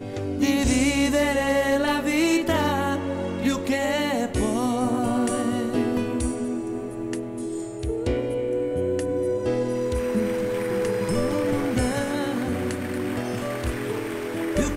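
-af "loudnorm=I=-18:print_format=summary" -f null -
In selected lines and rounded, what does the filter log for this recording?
Input Integrated:    -25.1 LUFS
Input True Peak:     -11.2 dBTP
Input LRA:             4.5 LU
Input Threshold:     -35.1 LUFS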